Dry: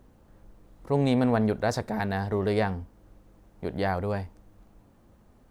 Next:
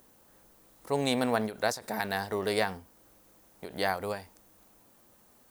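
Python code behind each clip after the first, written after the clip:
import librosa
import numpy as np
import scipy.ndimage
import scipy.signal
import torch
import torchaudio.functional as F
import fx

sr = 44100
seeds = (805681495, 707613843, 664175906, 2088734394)

y = fx.riaa(x, sr, side='recording')
y = fx.end_taper(y, sr, db_per_s=160.0)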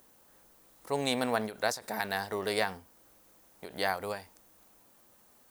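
y = fx.low_shelf(x, sr, hz=470.0, db=-5.0)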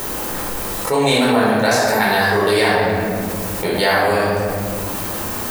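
y = fx.room_shoebox(x, sr, seeds[0], volume_m3=540.0, walls='mixed', distance_m=4.4)
y = fx.env_flatten(y, sr, amount_pct=70)
y = y * librosa.db_to_amplitude(1.5)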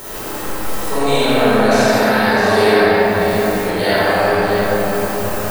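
y = x + 10.0 ** (-8.0 / 20.0) * np.pad(x, (int(655 * sr / 1000.0), 0))[:len(x)]
y = fx.rev_freeverb(y, sr, rt60_s=2.8, hf_ratio=0.55, predelay_ms=10, drr_db=-8.5)
y = y * librosa.db_to_amplitude(-7.5)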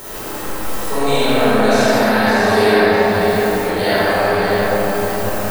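y = x + 10.0 ** (-9.0 / 20.0) * np.pad(x, (int(554 * sr / 1000.0), 0))[:len(x)]
y = y * librosa.db_to_amplitude(-1.0)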